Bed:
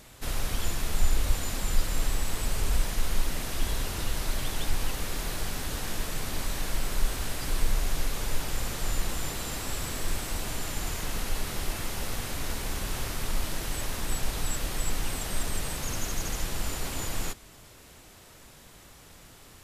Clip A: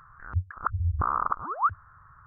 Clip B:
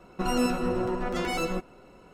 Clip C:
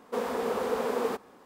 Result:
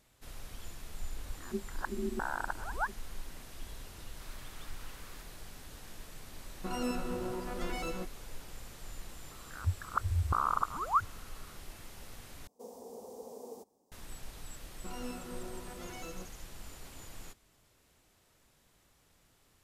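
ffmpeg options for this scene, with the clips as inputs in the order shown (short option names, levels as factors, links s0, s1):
-filter_complex "[1:a]asplit=2[s0][s1];[3:a]asplit=2[s2][s3];[2:a]asplit=2[s4][s5];[0:a]volume=0.15[s6];[s0]aeval=exprs='val(0)*sin(2*PI*300*n/s)':c=same[s7];[s2]highpass=f=1400:w=0.5412,highpass=f=1400:w=1.3066[s8];[s3]firequalizer=gain_entry='entry(840,0);entry(1400,-25);entry(5700,8)':delay=0.05:min_phase=1[s9];[s6]asplit=2[s10][s11];[s10]atrim=end=12.474[s12];[s9]atrim=end=1.45,asetpts=PTS-STARTPTS,volume=0.133[s13];[s11]atrim=start=13.916[s14];[s7]atrim=end=2.26,asetpts=PTS-STARTPTS,volume=0.447,afade=t=in:d=0.004:c=hsin,afade=t=out:st=2.256:d=0.004:c=hsin,adelay=1180[s15];[s8]atrim=end=1.45,asetpts=PTS-STARTPTS,volume=0.2,afade=t=in:d=0.004:c=hsin,afade=t=out:st=1.446:d=0.004:c=hsin,adelay=4070[s16];[s4]atrim=end=2.13,asetpts=PTS-STARTPTS,volume=0.335,afade=t=in:d=0.004:c=hsin,afade=t=out:st=2.126:d=0.004:c=hsin,adelay=6450[s17];[s1]atrim=end=2.26,asetpts=PTS-STARTPTS,volume=0.631,afade=t=in:d=0.004:c=hsin,afade=t=out:st=2.256:d=0.004:c=hsin,adelay=9310[s18];[s5]atrim=end=2.13,asetpts=PTS-STARTPTS,volume=0.141,afade=t=in:d=0.004:c=hsin,afade=t=out:st=2.126:d=0.004:c=hsin,adelay=14650[s19];[s12][s13]acrossfade=d=0.004:c1=hsin:c2=hsin[s20];[s20][s14]acrossfade=d=0.004:c1=hsin:c2=hsin[s21];[s21][s15][s16][s17][s18][s19]amix=inputs=6:normalize=0"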